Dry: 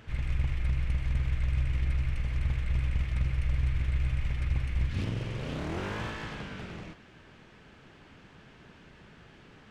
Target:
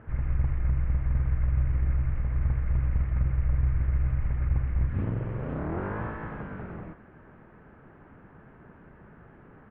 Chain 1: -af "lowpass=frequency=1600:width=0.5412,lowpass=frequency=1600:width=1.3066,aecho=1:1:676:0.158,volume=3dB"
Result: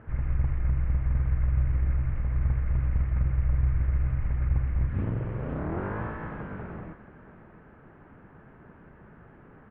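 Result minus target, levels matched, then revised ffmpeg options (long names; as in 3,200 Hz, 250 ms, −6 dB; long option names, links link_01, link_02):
echo-to-direct +9.5 dB
-af "lowpass=frequency=1600:width=0.5412,lowpass=frequency=1600:width=1.3066,aecho=1:1:676:0.0531,volume=3dB"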